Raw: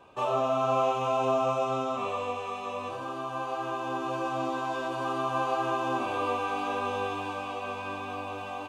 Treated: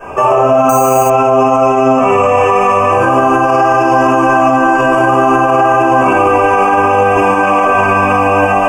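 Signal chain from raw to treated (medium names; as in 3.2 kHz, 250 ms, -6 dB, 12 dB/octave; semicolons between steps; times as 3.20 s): 3.42–4.02 s: peaking EQ 5.1 kHz +12 dB 0.31 oct; 7.15–7.65 s: Chebyshev high-pass 150 Hz, order 10; simulated room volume 150 m³, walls mixed, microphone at 5.2 m; 0.69–1.10 s: careless resampling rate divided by 6×, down filtered, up hold; Butterworth band-stop 3.9 kHz, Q 1.3; loudness maximiser +15.5 dB; trim -1 dB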